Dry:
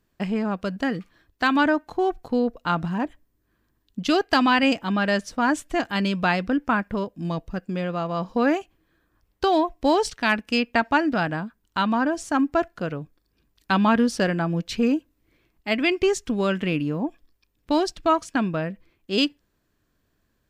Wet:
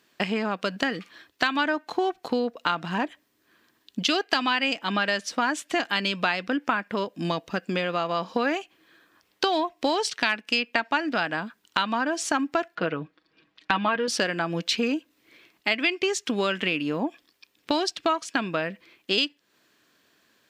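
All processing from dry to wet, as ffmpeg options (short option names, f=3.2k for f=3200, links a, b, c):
-filter_complex "[0:a]asettb=1/sr,asplit=3[a][b][c];[a]atrim=end=12.754[d];[b]atrim=start=12.75:end=14.08,asetpts=PTS-STARTPTS,afade=t=in:d=0.004:c=qsin,afade=t=out:st=1.326:d=0.004:c=qsin,lowpass=2.8k,aecho=1:1:6.3:0.57,atrim=end_sample=58653[e];[c]atrim=start=14.076[f];[d][e]acrossfade=d=0.004:c1=hsin:c2=qsin[g];[g][f]acrossfade=d=0.004:c1=qsin:c2=hsin,highpass=250,equalizer=f=3.3k:t=o:w=2.4:g=9,acompressor=threshold=-30dB:ratio=4,volume=6.5dB"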